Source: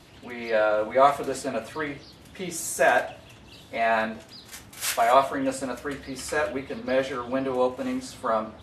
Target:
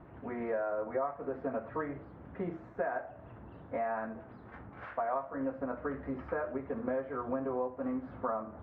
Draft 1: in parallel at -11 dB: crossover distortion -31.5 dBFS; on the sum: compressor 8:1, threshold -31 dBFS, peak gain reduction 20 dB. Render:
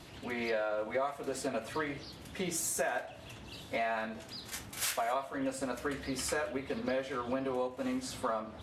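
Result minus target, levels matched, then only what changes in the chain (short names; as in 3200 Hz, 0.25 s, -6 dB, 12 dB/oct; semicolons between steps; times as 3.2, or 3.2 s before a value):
2000 Hz band +5.0 dB
add after compressor: LPF 1500 Hz 24 dB/oct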